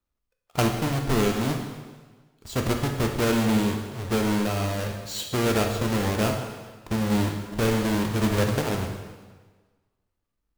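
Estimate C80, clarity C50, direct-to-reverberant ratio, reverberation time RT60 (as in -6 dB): 7.0 dB, 5.5 dB, 2.5 dB, 1.4 s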